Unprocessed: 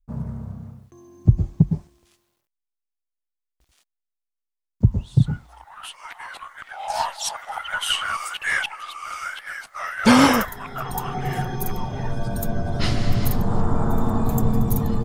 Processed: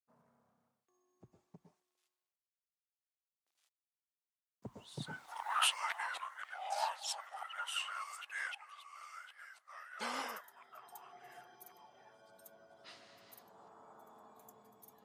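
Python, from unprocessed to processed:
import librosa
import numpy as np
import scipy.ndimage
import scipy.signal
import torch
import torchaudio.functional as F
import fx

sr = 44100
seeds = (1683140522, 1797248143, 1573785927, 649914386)

y = fx.doppler_pass(x, sr, speed_mps=13, closest_m=1.8, pass_at_s=5.58)
y = scipy.signal.sosfilt(scipy.signal.butter(2, 590.0, 'highpass', fs=sr, output='sos'), y)
y = y * librosa.db_to_amplitude(7.5)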